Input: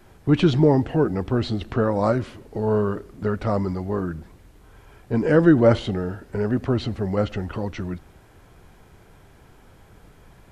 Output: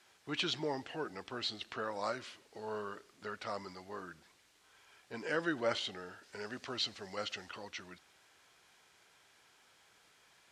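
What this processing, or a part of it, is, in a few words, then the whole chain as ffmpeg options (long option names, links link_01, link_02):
piezo pickup straight into a mixer: -filter_complex "[0:a]lowpass=5200,aderivative,asettb=1/sr,asplit=3[link_01][link_02][link_03];[link_01]atrim=end=6.234[link_04];[link_02]atrim=start=6.23:end=7.51,asetpts=PTS-STARTPTS,afade=type=in:duration=0.004:curve=qsin,afade=type=out:start_time=1.276:duration=0.004:curve=qsin,equalizer=frequency=5400:width=0.78:gain=5.5[link_05];[link_03]atrim=start=7.506[link_06];[link_04][link_05]acrossfade=duration=0.004:curve1=hsin:curve2=qsin[link_07];[link_07][link_06]acrossfade=duration=0.004:curve1=qsin:curve2=hsin,volume=4.5dB"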